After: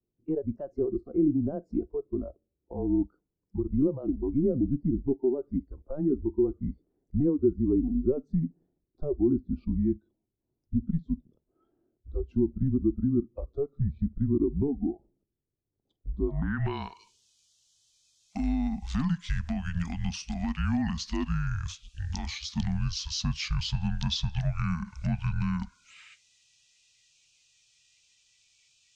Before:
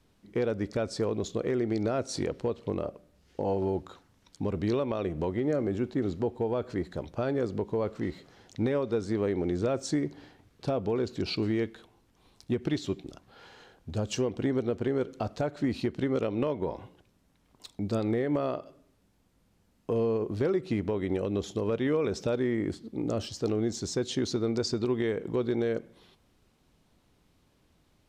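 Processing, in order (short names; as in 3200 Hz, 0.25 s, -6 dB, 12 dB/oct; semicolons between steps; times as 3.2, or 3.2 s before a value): speed glide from 128% -> 66%; frequency shift -150 Hz; low-pass sweep 360 Hz -> 6600 Hz, 16.21–16.89; spectral noise reduction 21 dB; mismatched tape noise reduction encoder only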